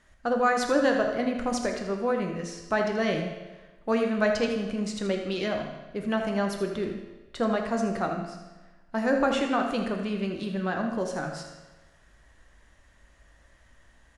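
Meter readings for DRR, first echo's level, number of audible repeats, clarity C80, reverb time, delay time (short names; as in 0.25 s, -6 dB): 2.5 dB, -9.5 dB, 1, 5.5 dB, 1.2 s, 80 ms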